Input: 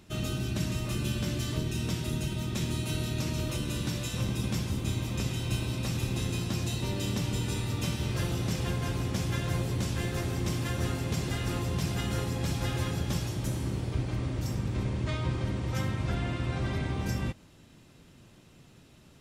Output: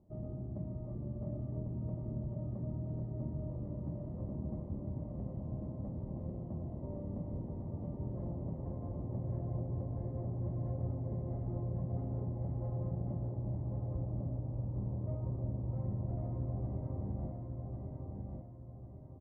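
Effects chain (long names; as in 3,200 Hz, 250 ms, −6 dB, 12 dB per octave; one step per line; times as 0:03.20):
transistor ladder low-pass 620 Hz, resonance 70%
comb filter 1 ms, depth 60%
repeating echo 1,098 ms, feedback 40%, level −3.5 dB
level −1.5 dB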